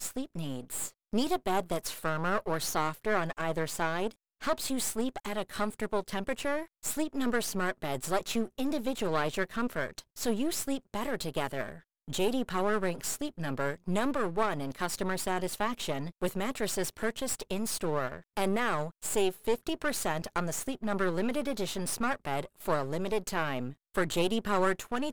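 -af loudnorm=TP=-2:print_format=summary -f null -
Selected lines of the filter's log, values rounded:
Input Integrated:    -32.5 LUFS
Input True Peak:     -13.4 dBTP
Input LRA:             1.4 LU
Input Threshold:     -42.5 LUFS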